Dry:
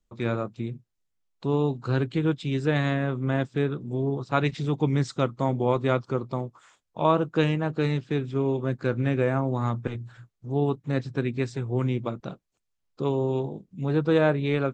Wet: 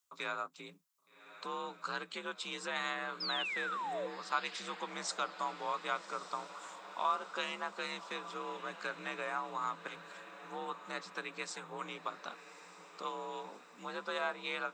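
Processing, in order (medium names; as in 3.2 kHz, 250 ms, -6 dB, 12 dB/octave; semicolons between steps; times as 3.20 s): band-stop 1.7 kHz, Q 24; frequency shift +50 Hz; peaking EQ 1.1 kHz +13.5 dB 1.2 oct; compression 2:1, threshold -27 dBFS, peak gain reduction 11.5 dB; differentiator; painted sound fall, 3.20–4.07 s, 490–5300 Hz -45 dBFS; echo that smears into a reverb 1180 ms, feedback 57%, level -13 dB; trim +6.5 dB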